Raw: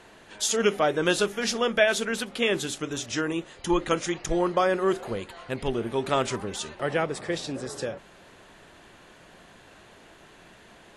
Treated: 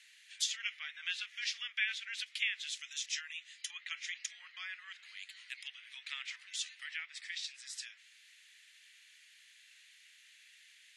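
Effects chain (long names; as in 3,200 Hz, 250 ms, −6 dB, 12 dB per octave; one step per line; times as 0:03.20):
treble cut that deepens with the level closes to 2,700 Hz, closed at −21.5 dBFS
Chebyshev high-pass filter 2,000 Hz, order 4
level −2.5 dB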